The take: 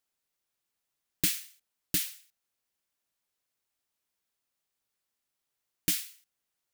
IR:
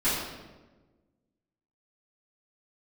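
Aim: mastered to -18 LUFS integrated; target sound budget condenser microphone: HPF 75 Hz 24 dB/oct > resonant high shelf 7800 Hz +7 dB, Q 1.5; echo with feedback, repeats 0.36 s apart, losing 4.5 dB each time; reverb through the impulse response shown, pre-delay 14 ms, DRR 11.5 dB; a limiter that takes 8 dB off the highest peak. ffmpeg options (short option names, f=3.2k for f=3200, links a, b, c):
-filter_complex "[0:a]alimiter=limit=-19dB:level=0:latency=1,aecho=1:1:360|720|1080|1440|1800|2160|2520|2880|3240:0.596|0.357|0.214|0.129|0.0772|0.0463|0.0278|0.0167|0.01,asplit=2[a][b];[1:a]atrim=start_sample=2205,adelay=14[c];[b][c]afir=irnorm=-1:irlink=0,volume=-24dB[d];[a][d]amix=inputs=2:normalize=0,highpass=f=75:w=0.5412,highpass=f=75:w=1.3066,highshelf=f=7.8k:t=q:w=1.5:g=7,volume=11.5dB"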